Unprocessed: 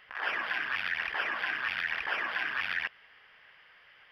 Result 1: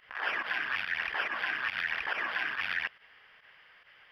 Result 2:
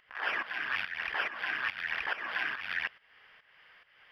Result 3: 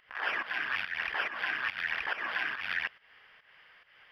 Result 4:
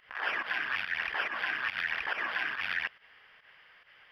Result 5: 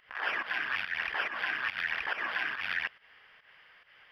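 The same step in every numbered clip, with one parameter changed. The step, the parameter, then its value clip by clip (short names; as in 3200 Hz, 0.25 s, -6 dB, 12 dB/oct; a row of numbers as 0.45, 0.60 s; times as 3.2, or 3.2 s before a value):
pump, release: 64, 371, 219, 101, 150 ms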